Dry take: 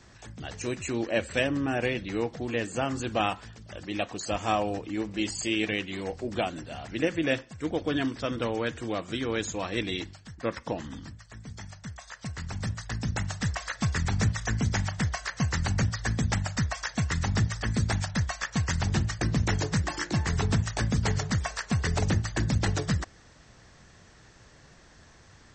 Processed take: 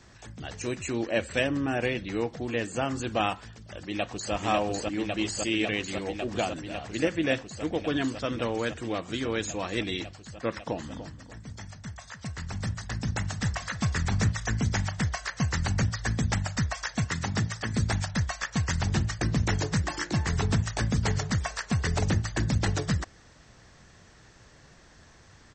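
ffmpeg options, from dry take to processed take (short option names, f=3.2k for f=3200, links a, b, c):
-filter_complex "[0:a]asplit=2[a][b];[b]afade=t=in:st=3.48:d=0.01,afade=t=out:st=4.33:d=0.01,aecho=0:1:550|1100|1650|2200|2750|3300|3850|4400|4950|5500|6050|6600:0.841395|0.715186|0.607908|0.516722|0.439214|0.373331|0.317332|0.269732|0.229272|0.194881|0.165649|0.140802[c];[a][c]amix=inputs=2:normalize=0,asettb=1/sr,asplit=3[d][e][f];[d]atrim=end=10.594[g];[e]atrim=start=10.59:end=14.3,asetpts=PTS-STARTPTS,afade=t=in:d=0.004:c=qsin,afade=t=out:st=3.706:d=0.004:c=qsin,asplit=2[h][i];[i]adelay=293,lowpass=f=2k:p=1,volume=-11.5dB,asplit=2[j][k];[k]adelay=293,lowpass=f=2k:p=1,volume=0.32,asplit=2[l][m];[m]adelay=293,lowpass=f=2k:p=1,volume=0.32[n];[h][j][l][n]amix=inputs=4:normalize=0,atrim=end_sample=163611[o];[f]atrim=start=14.296[p];[g][o]acrossfade=d=0.004:c1=hsin:c2=qsin[q];[q][p]acrossfade=d=0.004:c1=qsin:c2=hsin,asettb=1/sr,asplit=3[r][s][t];[r]atrim=end=17.044[u];[s]atrim=start=17.04:end=17.73,asetpts=PTS-STARTPTS,afade=t=in:d=0.004:c=qsin,afade=t=out:st=0.686:d=0.004:c=qsin,highpass=110[v];[t]atrim=start=17.726[w];[u][v]acrossfade=d=0.004:c1=hsin:c2=qsin[x];[x][w]acrossfade=d=0.004:c1=qsin:c2=hsin"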